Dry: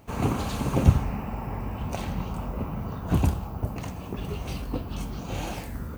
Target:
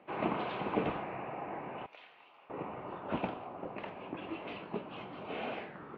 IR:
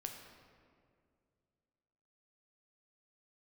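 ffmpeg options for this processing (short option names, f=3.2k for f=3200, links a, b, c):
-filter_complex "[0:a]highpass=f=330:t=q:w=0.5412,highpass=f=330:t=q:w=1.307,lowpass=f=3.2k:t=q:w=0.5176,lowpass=f=3.2k:t=q:w=0.7071,lowpass=f=3.2k:t=q:w=1.932,afreqshift=-85,asettb=1/sr,asplit=3[a][b][c];[a]atrim=end=1.864[d];[b]atrim=start=1.86:end=2.5,asetpts=PTS-STARTPTS,afade=t=in:d=0.004:c=qsin,afade=t=out:st=0.636:d=0.004:c=qsin,aderivative[e];[c]atrim=start=2.496[f];[d][e]acrossfade=d=0.004:c1=hsin:c2=qsin[g];[g][f]acrossfade=d=0.004:c1=qsin:c2=hsin,volume=-2dB"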